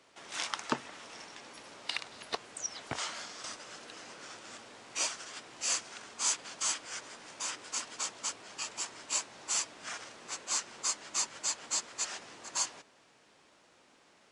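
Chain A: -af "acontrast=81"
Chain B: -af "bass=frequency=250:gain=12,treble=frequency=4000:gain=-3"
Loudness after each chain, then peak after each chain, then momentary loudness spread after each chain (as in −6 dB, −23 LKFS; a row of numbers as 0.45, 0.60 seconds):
−28.5, −37.5 LKFS; −7.5, −13.0 dBFS; 15, 13 LU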